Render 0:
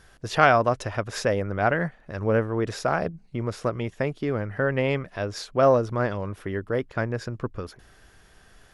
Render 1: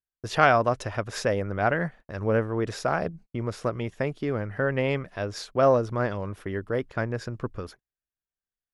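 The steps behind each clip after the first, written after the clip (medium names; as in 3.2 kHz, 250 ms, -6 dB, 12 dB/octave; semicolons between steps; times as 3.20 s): gate -42 dBFS, range -45 dB; trim -1.5 dB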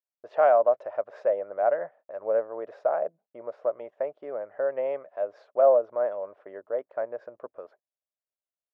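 ladder band-pass 650 Hz, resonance 70%; trim +5.5 dB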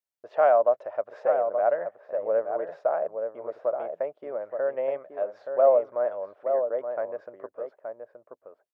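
echo from a far wall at 150 m, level -6 dB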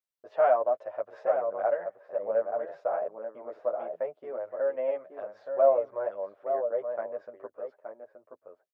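endless flanger 9.3 ms +0.25 Hz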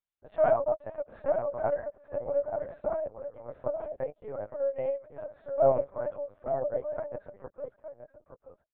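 LPC vocoder at 8 kHz pitch kept; trim -1.5 dB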